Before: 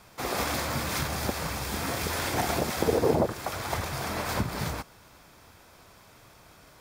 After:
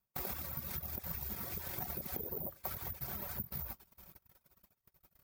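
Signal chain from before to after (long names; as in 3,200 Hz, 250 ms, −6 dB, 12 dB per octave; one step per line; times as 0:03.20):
source passing by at 0:02.12, 8 m/s, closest 6.7 metres
parametric band 75 Hz +13 dB 1.9 octaves
reversed playback
upward compression, threshold −33 dBFS
reversed playback
single-tap delay 121 ms −13 dB
downward compressor 12 to 1, threshold −37 dBFS, peak gain reduction 19 dB
comb filter 5.3 ms, depth 51%
noise gate −44 dBFS, range −34 dB
reverb reduction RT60 0.81 s
bad sample-rate conversion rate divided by 3×, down none, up zero stuff
tempo change 1.3×
level −3 dB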